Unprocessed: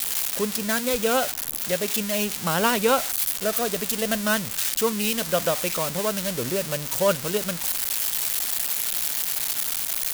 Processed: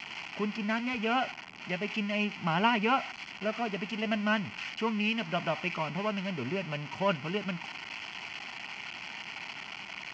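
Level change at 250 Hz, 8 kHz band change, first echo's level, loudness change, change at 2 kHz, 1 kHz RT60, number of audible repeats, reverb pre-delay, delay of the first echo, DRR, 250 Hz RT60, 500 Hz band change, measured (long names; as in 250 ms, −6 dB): −3.0 dB, −29.5 dB, no echo audible, −9.5 dB, −3.5 dB, no reverb audible, no echo audible, no reverb audible, no echo audible, no reverb audible, no reverb audible, −10.0 dB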